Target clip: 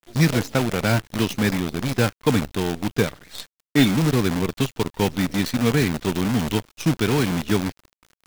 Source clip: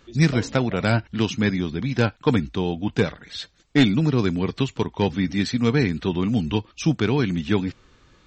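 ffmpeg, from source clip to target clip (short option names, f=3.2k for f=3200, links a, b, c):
-af "acrusher=bits=5:dc=4:mix=0:aa=0.000001"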